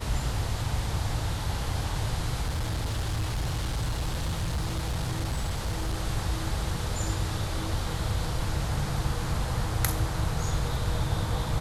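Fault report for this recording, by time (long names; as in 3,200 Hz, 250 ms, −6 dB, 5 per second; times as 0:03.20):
0:02.44–0:05.96: clipping −25 dBFS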